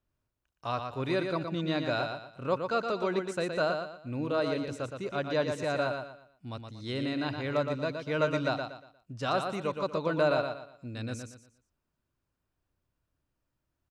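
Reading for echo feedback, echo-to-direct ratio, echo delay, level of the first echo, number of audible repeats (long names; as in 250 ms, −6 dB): 32%, −5.5 dB, 118 ms, −6.0 dB, 3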